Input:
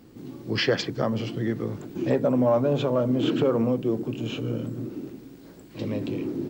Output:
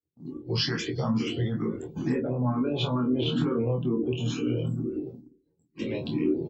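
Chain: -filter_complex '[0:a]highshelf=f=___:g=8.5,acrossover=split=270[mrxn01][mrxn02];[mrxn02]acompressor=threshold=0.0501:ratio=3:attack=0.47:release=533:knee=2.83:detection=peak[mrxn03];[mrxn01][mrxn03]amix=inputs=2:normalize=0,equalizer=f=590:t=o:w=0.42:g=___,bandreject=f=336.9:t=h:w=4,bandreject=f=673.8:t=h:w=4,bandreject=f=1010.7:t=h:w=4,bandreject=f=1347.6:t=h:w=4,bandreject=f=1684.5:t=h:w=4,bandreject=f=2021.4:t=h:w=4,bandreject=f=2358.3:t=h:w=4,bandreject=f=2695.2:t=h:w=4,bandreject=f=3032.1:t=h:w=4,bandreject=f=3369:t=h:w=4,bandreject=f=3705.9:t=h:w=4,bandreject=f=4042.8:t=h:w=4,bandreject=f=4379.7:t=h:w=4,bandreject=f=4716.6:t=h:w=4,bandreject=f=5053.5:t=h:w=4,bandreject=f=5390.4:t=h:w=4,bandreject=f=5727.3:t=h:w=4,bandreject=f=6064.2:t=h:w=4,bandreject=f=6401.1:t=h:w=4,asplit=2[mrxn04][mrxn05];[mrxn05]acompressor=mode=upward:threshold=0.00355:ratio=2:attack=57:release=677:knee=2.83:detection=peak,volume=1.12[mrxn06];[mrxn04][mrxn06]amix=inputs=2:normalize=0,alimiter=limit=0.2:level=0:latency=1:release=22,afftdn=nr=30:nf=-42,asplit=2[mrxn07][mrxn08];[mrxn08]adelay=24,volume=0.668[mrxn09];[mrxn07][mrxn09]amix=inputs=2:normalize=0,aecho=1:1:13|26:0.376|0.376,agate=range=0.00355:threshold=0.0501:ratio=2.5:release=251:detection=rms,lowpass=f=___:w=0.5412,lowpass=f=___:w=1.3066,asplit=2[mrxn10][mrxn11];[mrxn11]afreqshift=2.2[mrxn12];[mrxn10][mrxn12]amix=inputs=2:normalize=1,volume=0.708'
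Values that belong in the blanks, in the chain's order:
3500, -9.5, 8200, 8200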